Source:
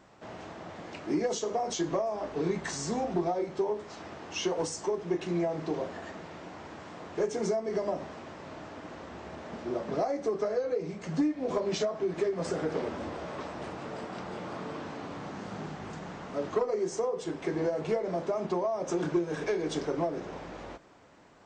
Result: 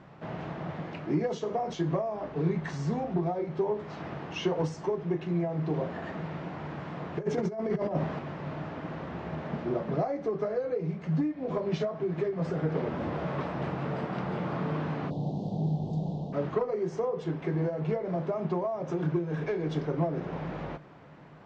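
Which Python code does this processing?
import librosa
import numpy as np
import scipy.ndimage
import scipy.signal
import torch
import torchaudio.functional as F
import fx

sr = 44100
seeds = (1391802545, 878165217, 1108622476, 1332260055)

y = fx.over_compress(x, sr, threshold_db=-33.0, ratio=-0.5, at=(7.17, 8.19))
y = fx.ellip_bandstop(y, sr, low_hz=770.0, high_hz=3700.0, order=3, stop_db=60, at=(15.09, 16.32), fade=0.02)
y = scipy.signal.sosfilt(scipy.signal.butter(2, 3000.0, 'lowpass', fs=sr, output='sos'), y)
y = fx.peak_eq(y, sr, hz=150.0, db=14.0, octaves=0.5)
y = fx.rider(y, sr, range_db=4, speed_s=0.5)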